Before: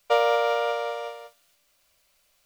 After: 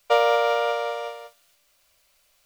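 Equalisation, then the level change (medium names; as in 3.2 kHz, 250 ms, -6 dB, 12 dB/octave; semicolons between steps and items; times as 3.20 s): peaking EQ 210 Hz -3.5 dB 1.4 oct; +2.5 dB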